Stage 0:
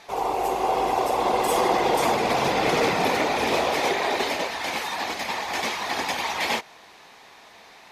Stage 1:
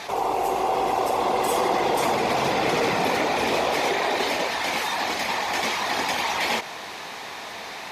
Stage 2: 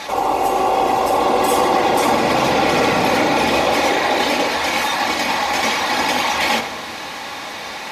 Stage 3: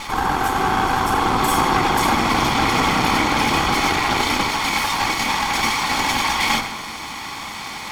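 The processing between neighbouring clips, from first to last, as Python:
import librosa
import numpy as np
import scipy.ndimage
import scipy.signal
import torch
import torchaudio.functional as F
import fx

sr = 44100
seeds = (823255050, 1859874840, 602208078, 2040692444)

y1 = scipy.signal.sosfilt(scipy.signal.butter(2, 55.0, 'highpass', fs=sr, output='sos'), x)
y1 = fx.env_flatten(y1, sr, amount_pct=50)
y1 = F.gain(torch.from_numpy(y1), -2.0).numpy()
y2 = fx.room_shoebox(y1, sr, seeds[0], volume_m3=3600.0, walls='furnished', distance_m=2.3)
y2 = F.gain(torch.from_numpy(y2), 5.0).numpy()
y3 = fx.lower_of_two(y2, sr, delay_ms=0.9)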